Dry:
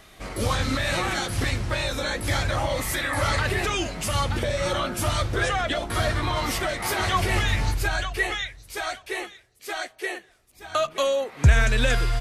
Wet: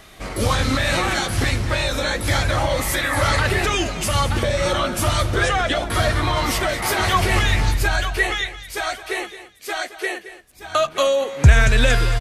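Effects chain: delay 221 ms -14 dB; trim +5 dB

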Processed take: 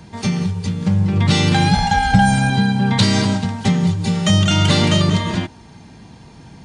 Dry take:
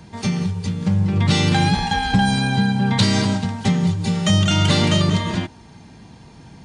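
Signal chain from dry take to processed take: 1.71–2.50 s: comb 1.4 ms, depth 67%; trim +2 dB

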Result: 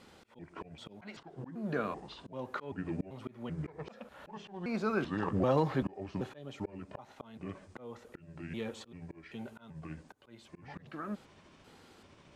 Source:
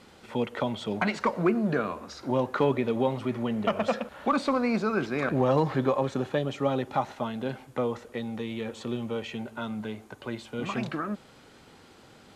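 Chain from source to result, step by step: pitch shift switched off and on -5.5 st, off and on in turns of 388 ms; slow attack 405 ms; trim -4.5 dB

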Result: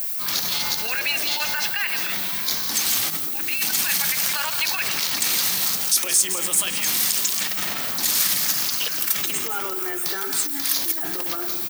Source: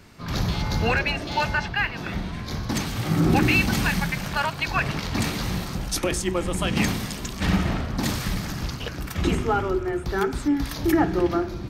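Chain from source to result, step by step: compressor with a negative ratio -24 dBFS, ratio -0.5; high-pass 140 Hz 12 dB/octave; on a send: delay 166 ms -13.5 dB; on the sum: added noise violet -51 dBFS; treble shelf 5.1 kHz +6 dB; peak limiter -19.5 dBFS, peak gain reduction 10 dB; tilt EQ +4.5 dB/octave

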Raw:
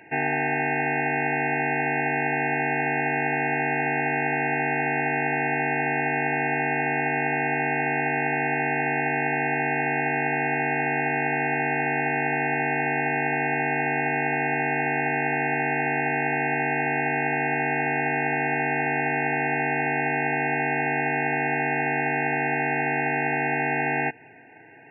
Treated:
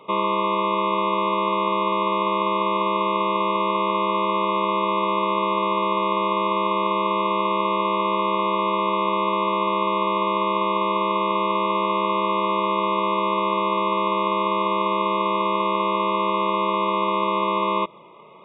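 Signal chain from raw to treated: speed mistake 33 rpm record played at 45 rpm; resonant high shelf 1.7 kHz -8.5 dB, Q 1.5; trim +3.5 dB

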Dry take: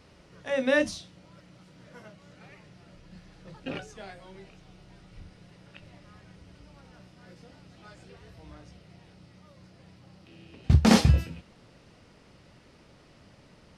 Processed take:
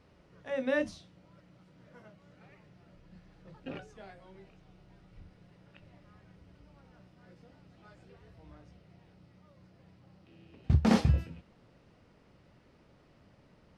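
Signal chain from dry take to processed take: treble shelf 3.1 kHz -10 dB; trim -5.5 dB

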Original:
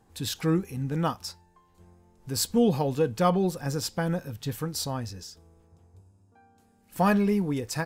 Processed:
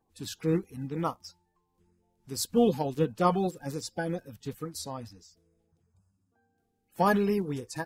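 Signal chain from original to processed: coarse spectral quantiser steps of 30 dB; upward expansion 1.5:1, over -45 dBFS

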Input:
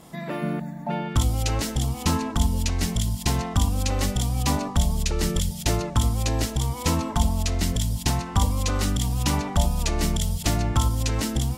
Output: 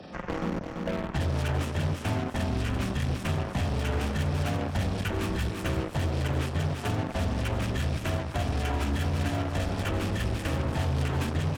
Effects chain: frequency axis rescaled in octaves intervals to 76%; band-stop 2.1 kHz, Q 7.8; 7.74–9.70 s: comb 3 ms, depth 38%; hum notches 60/120/180/240 Hz; peak limiter -18 dBFS, peak gain reduction 7.5 dB; Chebyshev shaper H 7 -15 dB, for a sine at -18 dBFS; peaking EQ 4.2 kHz -11 dB 1.1 oct; hard clipper -24 dBFS, distortion -14 dB; feedback delay 337 ms, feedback 30%, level -8 dB; three bands compressed up and down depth 70%

